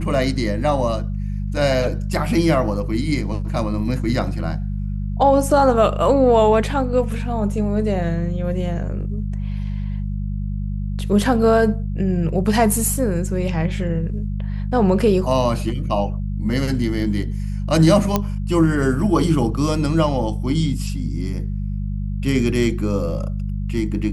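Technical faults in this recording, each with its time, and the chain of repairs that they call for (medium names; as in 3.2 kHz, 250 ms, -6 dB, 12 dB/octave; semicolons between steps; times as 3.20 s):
hum 50 Hz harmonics 4 -24 dBFS
18.16 s: pop -4 dBFS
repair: de-click; de-hum 50 Hz, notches 4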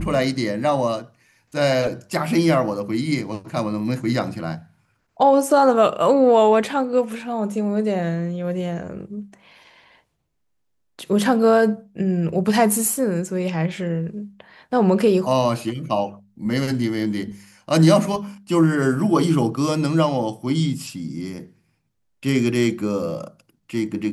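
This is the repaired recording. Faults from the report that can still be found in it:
nothing left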